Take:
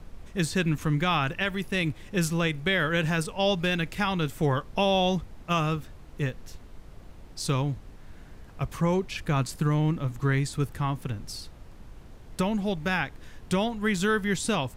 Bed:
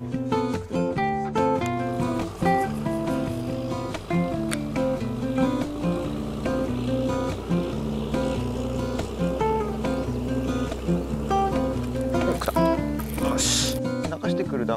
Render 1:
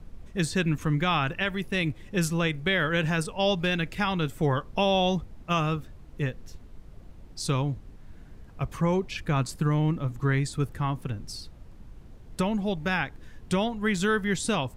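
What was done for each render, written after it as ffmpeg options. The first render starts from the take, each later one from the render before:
ffmpeg -i in.wav -af "afftdn=noise_reduction=6:noise_floor=-48" out.wav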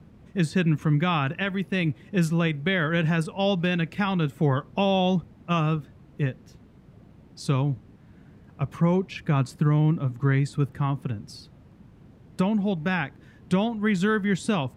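ffmpeg -i in.wav -af "highpass=150,bass=frequency=250:gain=8,treble=frequency=4000:gain=-7" out.wav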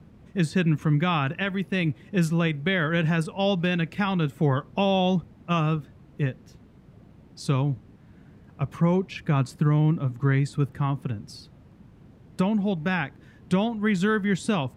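ffmpeg -i in.wav -af anull out.wav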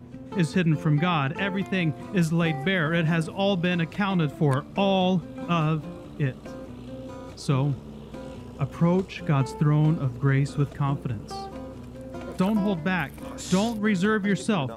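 ffmpeg -i in.wav -i bed.wav -filter_complex "[1:a]volume=-13.5dB[link_01];[0:a][link_01]amix=inputs=2:normalize=0" out.wav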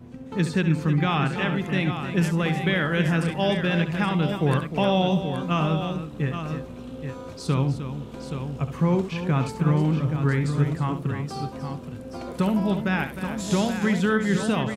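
ffmpeg -i in.wav -af "aecho=1:1:69|307|825:0.299|0.299|0.376" out.wav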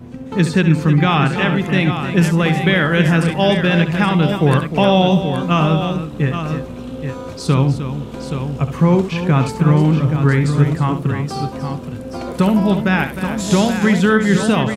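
ffmpeg -i in.wav -af "volume=8.5dB,alimiter=limit=-2dB:level=0:latency=1" out.wav

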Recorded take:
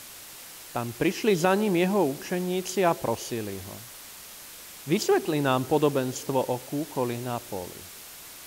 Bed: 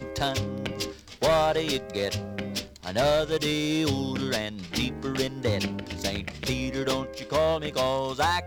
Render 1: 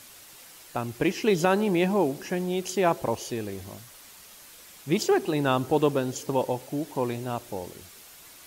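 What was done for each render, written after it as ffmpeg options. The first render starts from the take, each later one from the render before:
ffmpeg -i in.wav -af "afftdn=noise_reduction=6:noise_floor=-45" out.wav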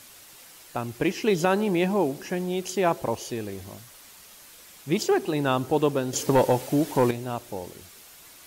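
ffmpeg -i in.wav -filter_complex "[0:a]asettb=1/sr,asplit=3[link_01][link_02][link_03];[link_01]atrim=end=6.134[link_04];[link_02]atrim=start=6.13:end=7.11,asetpts=PTS-STARTPTS,afade=type=in:duration=0.004:curve=qsin,afade=type=out:start_time=0.976:duration=0.004:curve=qsin,aeval=exprs='0.251*sin(PI/2*1.58*val(0)/0.251)':channel_layout=same[link_05];[link_03]atrim=start=7.106[link_06];[link_04][link_05]acrossfade=duration=0.004:curve1=hsin:curve2=qsin[link_07];[link_07][link_06]acrossfade=duration=0.004:curve1=qsin:curve2=hsin" out.wav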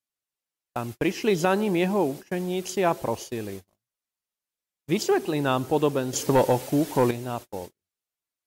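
ffmpeg -i in.wav -af "agate=range=-43dB:threshold=-35dB:ratio=16:detection=peak" out.wav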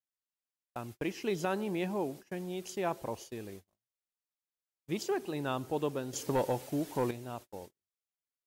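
ffmpeg -i in.wav -af "volume=-10.5dB" out.wav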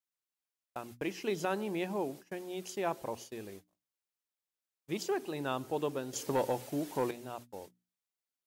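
ffmpeg -i in.wav -af "lowshelf=frequency=120:gain=-8,bandreject=frequency=60:width_type=h:width=6,bandreject=frequency=120:width_type=h:width=6,bandreject=frequency=180:width_type=h:width=6,bandreject=frequency=240:width_type=h:width=6,bandreject=frequency=300:width_type=h:width=6" out.wav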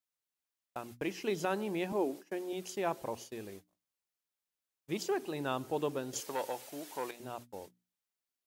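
ffmpeg -i in.wav -filter_complex "[0:a]asettb=1/sr,asplit=3[link_01][link_02][link_03];[link_01]atrim=end=1.924[link_04];[link_02]atrim=start=1.92:end=2.53,asetpts=PTS-STARTPTS,afade=type=in:duration=0.004:curve=qsin,afade=type=out:start_time=0.606:duration=0.004:curve=qsin,highpass=frequency=290:width_type=q:width=1.6[link_05];[link_03]atrim=start=2.526[link_06];[link_04][link_05]acrossfade=duration=0.004:curve1=hsin:curve2=qsin[link_07];[link_07][link_06]acrossfade=duration=0.004:curve1=qsin:curve2=hsin,asettb=1/sr,asplit=3[link_08][link_09][link_10];[link_08]atrim=end=6.204[link_11];[link_09]atrim=start=6.2:end=7.2,asetpts=PTS-STARTPTS,afade=type=in:duration=0.004:curve=qsin,afade=type=out:start_time=0.996:duration=0.004:curve=qsin,highpass=frequency=930:poles=1[link_12];[link_10]atrim=start=7.196[link_13];[link_11][link_12]acrossfade=duration=0.004:curve1=hsin:curve2=qsin[link_14];[link_14][link_13]acrossfade=duration=0.004:curve1=qsin:curve2=hsin" out.wav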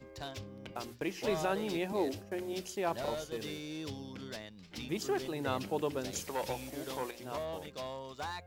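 ffmpeg -i in.wav -i bed.wav -filter_complex "[1:a]volume=-16dB[link_01];[0:a][link_01]amix=inputs=2:normalize=0" out.wav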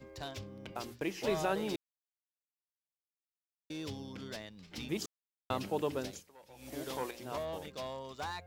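ffmpeg -i in.wav -filter_complex "[0:a]asplit=7[link_01][link_02][link_03][link_04][link_05][link_06][link_07];[link_01]atrim=end=1.76,asetpts=PTS-STARTPTS,afade=type=out:start_time=1.756:duration=0.004:curve=hsin[link_08];[link_02]atrim=start=1.76:end=3.7,asetpts=PTS-STARTPTS,volume=0[link_09];[link_03]atrim=start=3.7:end=5.06,asetpts=PTS-STARTPTS,afade=type=in:duration=0.004:curve=hsin,afade=type=out:start_time=1.356:duration=0.004:curve=hsin[link_10];[link_04]atrim=start=5.06:end=5.5,asetpts=PTS-STARTPTS,volume=0[link_11];[link_05]atrim=start=5.5:end=6.29,asetpts=PTS-STARTPTS,afade=type=in:duration=0.004:curve=hsin,afade=type=out:start_time=0.54:duration=0.25:curve=qua:silence=0.0794328[link_12];[link_06]atrim=start=6.29:end=6.48,asetpts=PTS-STARTPTS,volume=-22dB[link_13];[link_07]atrim=start=6.48,asetpts=PTS-STARTPTS,afade=type=in:duration=0.25:curve=qua:silence=0.0794328[link_14];[link_08][link_09][link_10][link_11][link_12][link_13][link_14]concat=n=7:v=0:a=1" out.wav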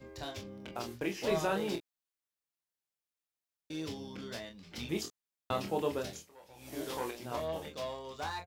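ffmpeg -i in.wav -af "aecho=1:1:25|42:0.562|0.282" out.wav

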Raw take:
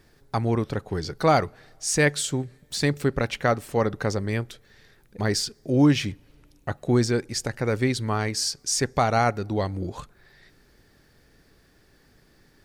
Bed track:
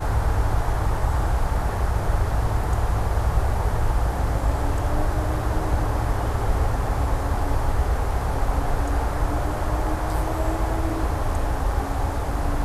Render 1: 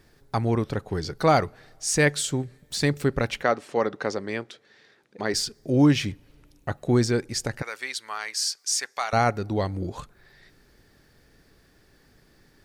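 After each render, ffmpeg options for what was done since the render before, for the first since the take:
ffmpeg -i in.wav -filter_complex "[0:a]asplit=3[link_01][link_02][link_03];[link_01]afade=type=out:start_time=3.42:duration=0.02[link_04];[link_02]highpass=260,lowpass=6000,afade=type=in:start_time=3.42:duration=0.02,afade=type=out:start_time=5.33:duration=0.02[link_05];[link_03]afade=type=in:start_time=5.33:duration=0.02[link_06];[link_04][link_05][link_06]amix=inputs=3:normalize=0,asettb=1/sr,asplit=3[link_07][link_08][link_09];[link_07]atrim=end=7.624[link_10];[link_08]atrim=start=7.62:end=9.13,asetpts=PTS-STARTPTS,afade=type=in:duration=0.004:curve=qsin,afade=type=out:start_time=1.506:duration=0.004:curve=qsin,highpass=1200[link_11];[link_09]atrim=start=9.126[link_12];[link_10][link_11]acrossfade=duration=0.004:curve1=hsin:curve2=qsin[link_13];[link_13][link_12]acrossfade=duration=0.004:curve1=qsin:curve2=hsin" out.wav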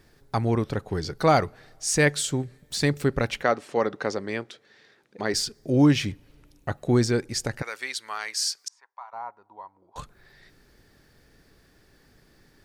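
ffmpeg -i in.wav -filter_complex "[0:a]asettb=1/sr,asplit=3[link_01][link_02][link_03];[link_01]atrim=end=8.684[link_04];[link_02]atrim=start=8.68:end=9.96,asetpts=PTS-STARTPTS,afade=type=in:duration=0.004:curve=qsin,afade=type=out:start_time=1.276:duration=0.004:curve=qsin,bandpass=frequency=960:width_type=q:width=12[link_05];[link_03]atrim=start=9.956[link_06];[link_04][link_05]acrossfade=duration=0.004:curve1=hsin:curve2=qsin[link_07];[link_07][link_06]acrossfade=duration=0.004:curve1=qsin:curve2=hsin" out.wav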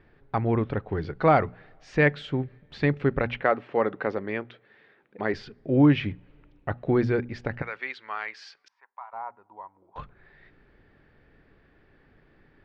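ffmpeg -i in.wav -af "lowpass=frequency=2800:width=0.5412,lowpass=frequency=2800:width=1.3066,bandreject=frequency=60:width_type=h:width=6,bandreject=frequency=120:width_type=h:width=6,bandreject=frequency=180:width_type=h:width=6,bandreject=frequency=240:width_type=h:width=6" out.wav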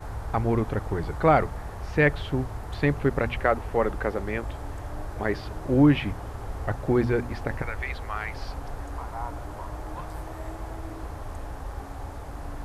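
ffmpeg -i in.wav -i bed.wav -filter_complex "[1:a]volume=-12.5dB[link_01];[0:a][link_01]amix=inputs=2:normalize=0" out.wav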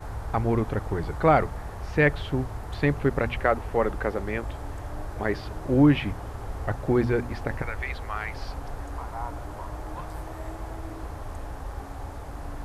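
ffmpeg -i in.wav -af anull out.wav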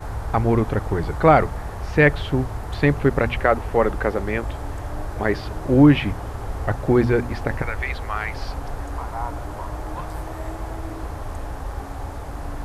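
ffmpeg -i in.wav -af "volume=5.5dB,alimiter=limit=-3dB:level=0:latency=1" out.wav

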